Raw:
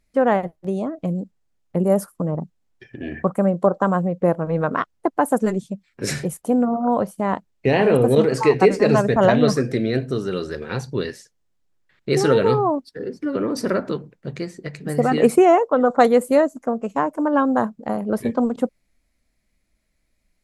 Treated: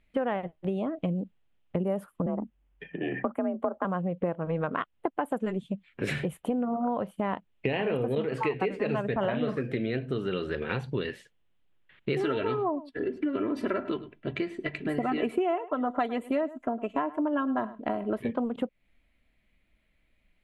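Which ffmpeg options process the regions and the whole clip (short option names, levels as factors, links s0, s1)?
-filter_complex "[0:a]asettb=1/sr,asplit=3[s0][s1][s2];[s0]atrim=end=2.264[s3];[s1]atrim=start=2.26:end=3.85,asetpts=PTS-STARTPTS,afade=t=in:d=0.004:c=qsin,afade=t=out:st=1.586:d=0.004:c=qsin,equalizer=f=4400:t=o:w=0.9:g=-11,afreqshift=47[s4];[s2]atrim=start=3.846[s5];[s3][s4]acrossfade=d=0.004:c1=hsin:c2=qsin[s6];[s6][s5]acrossfade=d=0.004:c1=qsin:c2=hsin,asettb=1/sr,asplit=3[s7][s8][s9];[s7]atrim=end=9.184[s10];[s8]atrim=start=9.18:end=9.58,asetpts=PTS-STARTPTS,afade=t=in:d=0.004:c=qsin,afade=t=out:st=0.396:d=0.004:c=qsin,acrossover=split=2900[s11][s12];[s12]acompressor=threshold=0.0141:ratio=4:attack=1:release=60[s13];[s11][s13]amix=inputs=2:normalize=0,asplit=2[s14][s15];[s15]adelay=45,volume=0.335[s16];[s14][s16]amix=inputs=2:normalize=0,atrim=end_sample=17640[s17];[s9]atrim=start=9.576[s18];[s10][s17]acrossfade=d=0.004:c1=hsin:c2=qsin[s19];[s19][s18]acrossfade=d=0.004:c1=qsin:c2=hsin,asettb=1/sr,asplit=3[s20][s21][s22];[s20]atrim=end=12.194[s23];[s21]atrim=start=12.19:end=18.19,asetpts=PTS-STARTPTS,afade=t=in:d=0.004:c=qsin,afade=t=out:st=5.996:d=0.004:c=qsin,highshelf=f=9300:g=-5.5,aecho=1:1:3:0.67,atrim=end_sample=264600,aecho=1:1:105:0.0944,atrim=end_sample=264600[s24];[s22]atrim=start=18.186[s25];[s23][s24]acrossfade=d=0.004:c1=hsin:c2=qsin[s26];[s26][s25]acrossfade=d=0.004:c1=qsin:c2=hsin,highshelf=f=4100:t=q:w=3:g=-10.5,acompressor=threshold=0.0447:ratio=5"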